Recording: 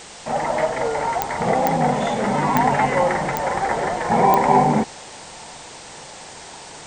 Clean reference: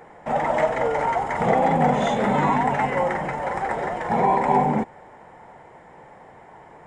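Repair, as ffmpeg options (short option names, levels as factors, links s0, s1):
-af "adeclick=t=4,afwtdn=0.014,asetnsamples=n=441:p=0,asendcmd='2.55 volume volume -4dB',volume=1"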